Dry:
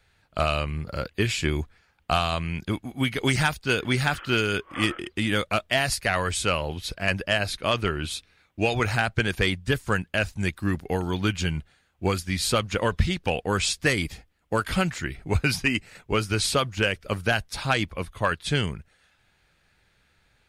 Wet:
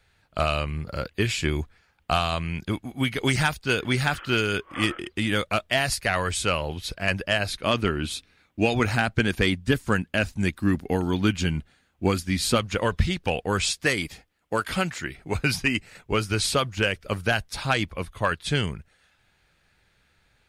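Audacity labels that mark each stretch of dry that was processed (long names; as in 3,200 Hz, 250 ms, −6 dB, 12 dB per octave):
7.660000	12.580000	parametric band 250 Hz +7 dB
13.710000	15.390000	low-shelf EQ 120 Hz −10.5 dB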